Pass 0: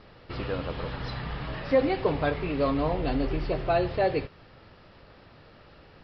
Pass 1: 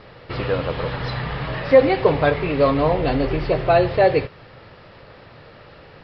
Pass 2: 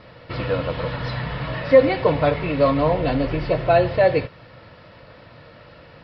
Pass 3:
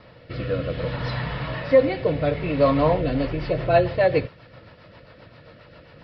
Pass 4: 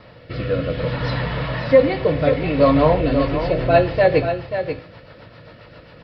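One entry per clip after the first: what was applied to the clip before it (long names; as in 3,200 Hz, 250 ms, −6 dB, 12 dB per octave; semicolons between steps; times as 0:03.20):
graphic EQ with 10 bands 125 Hz +7 dB, 500 Hz +7 dB, 1,000 Hz +4 dB, 2,000 Hz +6 dB, 4,000 Hz +4 dB; level +2.5 dB
notch comb filter 400 Hz
rotating-speaker cabinet horn 0.6 Hz, later 7.5 Hz, at 0:02.76
tuned comb filter 55 Hz, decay 0.51 s, mix 50%; single-tap delay 536 ms −8.5 dB; level +8 dB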